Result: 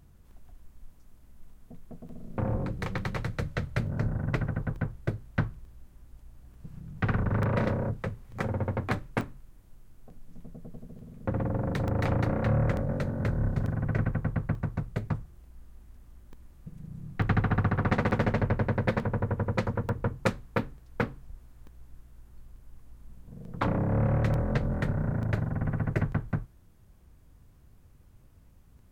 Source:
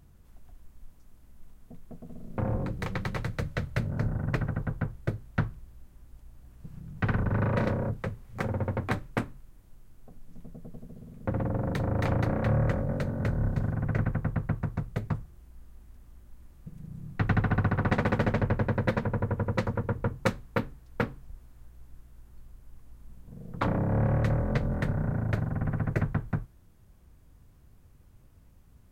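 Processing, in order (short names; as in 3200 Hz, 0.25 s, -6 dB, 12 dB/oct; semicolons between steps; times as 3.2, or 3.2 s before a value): crackling interface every 0.89 s, samples 64, zero, from 0.31; Doppler distortion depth 0.21 ms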